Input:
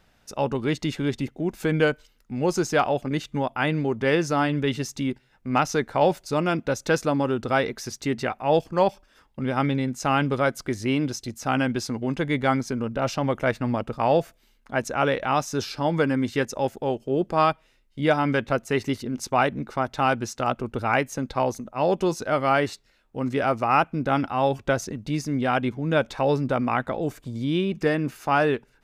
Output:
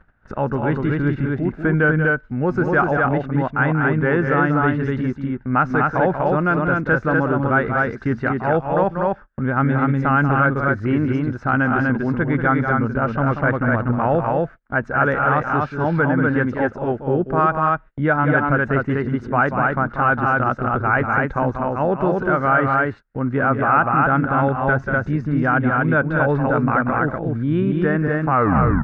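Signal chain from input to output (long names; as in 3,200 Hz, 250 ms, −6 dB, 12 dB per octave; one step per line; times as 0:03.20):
turntable brake at the end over 0.53 s
low-pass with resonance 1,500 Hz, resonance Q 4.3
low-shelf EQ 260 Hz +11 dB
on a send: loudspeakers that aren't time-aligned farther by 64 metres −9 dB, 84 metres −3 dB
on the sum: upward compression, threshold −21 dBFS
noise gate −32 dBFS, range −26 dB
in parallel at +2 dB: brickwall limiter −8 dBFS, peak gain reduction 8 dB
on the sum: level −8.5 dB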